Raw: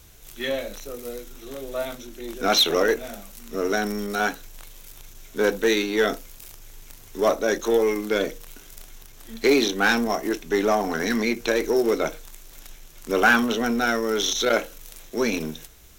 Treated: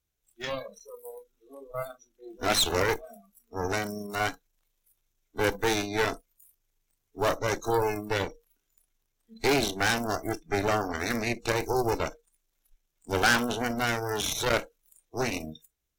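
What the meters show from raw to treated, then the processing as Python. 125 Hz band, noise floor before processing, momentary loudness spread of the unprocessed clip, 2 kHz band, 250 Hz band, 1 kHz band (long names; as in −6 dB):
+5.0 dB, −47 dBFS, 18 LU, −5.5 dB, −8.0 dB, −3.0 dB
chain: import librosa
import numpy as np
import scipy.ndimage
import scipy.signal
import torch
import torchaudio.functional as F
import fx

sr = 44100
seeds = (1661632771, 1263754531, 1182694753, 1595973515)

y = fx.cheby_harmonics(x, sr, harmonics=(4, 6), levels_db=(-9, -6), full_scale_db=-5.5)
y = fx.noise_reduce_blind(y, sr, reduce_db=25)
y = y * 10.0 ** (-7.5 / 20.0)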